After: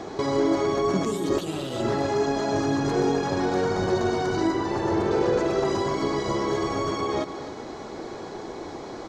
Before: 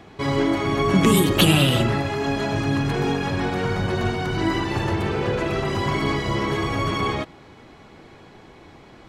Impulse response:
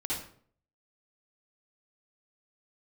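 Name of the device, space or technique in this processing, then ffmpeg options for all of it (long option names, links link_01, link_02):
de-esser from a sidechain: -filter_complex "[0:a]asplit=2[link_01][link_02];[link_02]highpass=frequency=4400:poles=1,apad=whole_len=400831[link_03];[link_01][link_03]sidechaincompress=threshold=-43dB:ratio=16:attack=0.96:release=99,asettb=1/sr,asplit=3[link_04][link_05][link_06];[link_04]atrim=end=4.524[link_07];[link_05]atrim=start=4.52:end=5.11,asetpts=PTS-STARTPTS,afade=type=in:duration=0.004:curve=qsin,afade=type=out:start_time=0.586:duration=0.004:curve=qsin,acrossover=split=2800[link_08][link_09];[link_09]acompressor=threshold=-53dB:ratio=4:attack=1:release=60[link_10];[link_08][link_10]amix=inputs=2:normalize=0[link_11];[link_06]atrim=start=5.106[link_12];[link_07][link_11]acrossfade=duration=0.004:curve1=hsin:curve2=qsin[link_13];[link_13][link_12]acrossfade=duration=0.004:curve1=qsin:curve2=hsin,firequalizer=gain_entry='entry(120,0);entry(360,12);entry(2700,-2);entry(4000,8);entry(6500,13);entry(10000,-2)':delay=0.05:min_phase=1,aecho=1:1:259:0.237,volume=1.5dB"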